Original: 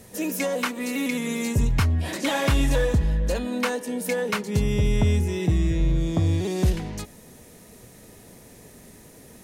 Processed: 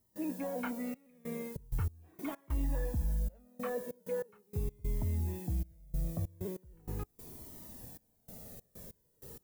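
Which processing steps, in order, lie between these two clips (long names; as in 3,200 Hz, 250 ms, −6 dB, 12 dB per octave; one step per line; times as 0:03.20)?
Bessel low-pass filter 1,000 Hz, order 2
reversed playback
downward compressor 4 to 1, threshold −31 dBFS, peak gain reduction 12.5 dB
reversed playback
background noise violet −48 dBFS
gate pattern ".xxxxx..xx.x..x" 96 BPM −24 dB
flanger whose copies keep moving one way falling 0.4 Hz
level +1 dB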